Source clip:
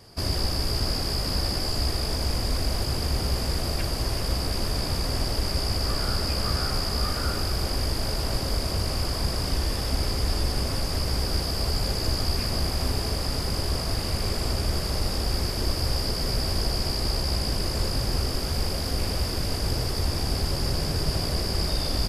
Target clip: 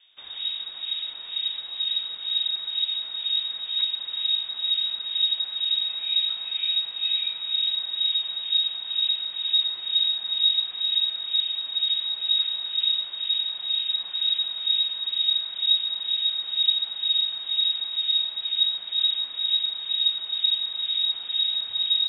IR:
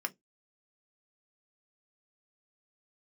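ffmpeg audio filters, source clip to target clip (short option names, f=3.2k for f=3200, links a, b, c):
-filter_complex "[0:a]acrossover=split=2100[a][b];[a]aeval=exprs='val(0)*(1-0.7/2+0.7/2*cos(2*PI*2.1*n/s))':c=same[c];[b]aeval=exprs='val(0)*(1-0.7/2-0.7/2*cos(2*PI*2.1*n/s))':c=same[d];[c][d]amix=inputs=2:normalize=0,asubboost=boost=4:cutoff=72,lowpass=f=3.2k:t=q:w=0.5098,lowpass=f=3.2k:t=q:w=0.6013,lowpass=f=3.2k:t=q:w=0.9,lowpass=f=3.2k:t=q:w=2.563,afreqshift=-3800,volume=-5.5dB"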